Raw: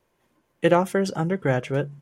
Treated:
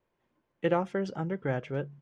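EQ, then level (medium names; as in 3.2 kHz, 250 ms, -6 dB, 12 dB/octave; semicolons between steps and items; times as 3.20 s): distance through air 140 m; -8.0 dB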